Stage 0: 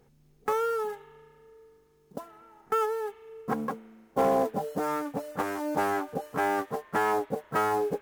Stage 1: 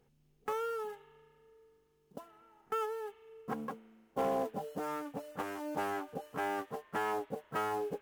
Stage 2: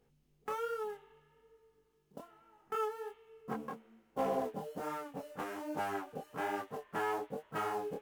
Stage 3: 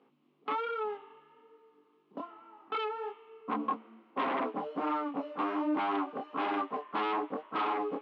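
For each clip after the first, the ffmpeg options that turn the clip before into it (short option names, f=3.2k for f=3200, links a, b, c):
-af "equalizer=f=2.9k:t=o:w=0.42:g=5.5,volume=-8.5dB"
-af "flanger=delay=18.5:depth=7.4:speed=1.2,volume=1.5dB"
-af "aeval=exprs='0.075*sin(PI/2*3.55*val(0)/0.075)':c=same,highpass=f=230:w=0.5412,highpass=f=230:w=1.3066,equalizer=f=290:t=q:w=4:g=8,equalizer=f=470:t=q:w=4:g=-5,equalizer=f=1.1k:t=q:w=4:g=10,equalizer=f=1.7k:t=q:w=4:g=-6,lowpass=f=3.3k:w=0.5412,lowpass=f=3.3k:w=1.3066,volume=-7dB"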